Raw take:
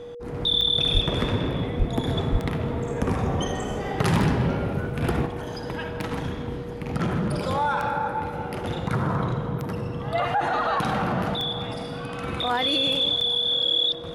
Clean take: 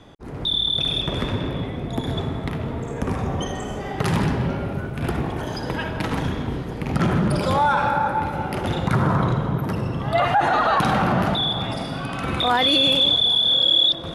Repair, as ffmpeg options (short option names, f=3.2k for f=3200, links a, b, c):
-filter_complex "[0:a]adeclick=t=4,bandreject=f=480:w=30,asplit=3[a][b][c];[a]afade=t=out:st=0.93:d=0.02[d];[b]highpass=f=140:w=0.5412,highpass=f=140:w=1.3066,afade=t=in:st=0.93:d=0.02,afade=t=out:st=1.05:d=0.02[e];[c]afade=t=in:st=1.05:d=0.02[f];[d][e][f]amix=inputs=3:normalize=0,asplit=3[g][h][i];[g]afade=t=out:st=1.78:d=0.02[j];[h]highpass=f=140:w=0.5412,highpass=f=140:w=1.3066,afade=t=in:st=1.78:d=0.02,afade=t=out:st=1.9:d=0.02[k];[i]afade=t=in:st=1.9:d=0.02[l];[j][k][l]amix=inputs=3:normalize=0,asplit=3[m][n][o];[m]afade=t=out:st=2.31:d=0.02[p];[n]highpass=f=140:w=0.5412,highpass=f=140:w=1.3066,afade=t=in:st=2.31:d=0.02,afade=t=out:st=2.43:d=0.02[q];[o]afade=t=in:st=2.43:d=0.02[r];[p][q][r]amix=inputs=3:normalize=0,asetnsamples=n=441:p=0,asendcmd='5.26 volume volume 5.5dB',volume=0dB"